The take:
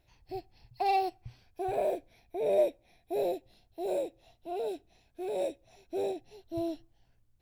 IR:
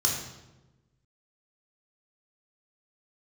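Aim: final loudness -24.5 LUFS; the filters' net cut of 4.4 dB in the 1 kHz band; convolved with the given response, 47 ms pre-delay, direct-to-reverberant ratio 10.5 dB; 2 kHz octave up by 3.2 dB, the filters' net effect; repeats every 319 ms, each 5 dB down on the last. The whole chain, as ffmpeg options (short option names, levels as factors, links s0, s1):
-filter_complex "[0:a]equalizer=f=1000:t=o:g=-8,equalizer=f=2000:t=o:g=6,aecho=1:1:319|638|957|1276|1595|1914|2233:0.562|0.315|0.176|0.0988|0.0553|0.031|0.0173,asplit=2[s0][s1];[1:a]atrim=start_sample=2205,adelay=47[s2];[s1][s2]afir=irnorm=-1:irlink=0,volume=0.106[s3];[s0][s3]amix=inputs=2:normalize=0,volume=3.16"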